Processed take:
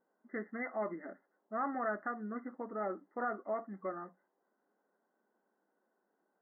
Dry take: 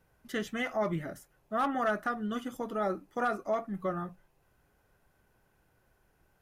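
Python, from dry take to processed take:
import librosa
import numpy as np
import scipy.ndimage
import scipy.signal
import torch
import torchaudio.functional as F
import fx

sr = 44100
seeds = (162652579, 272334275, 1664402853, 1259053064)

y = fx.brickwall_bandpass(x, sr, low_hz=190.0, high_hz=2100.0)
y = fx.env_lowpass(y, sr, base_hz=1200.0, full_db=-27.5)
y = F.gain(torch.from_numpy(y), -6.0).numpy()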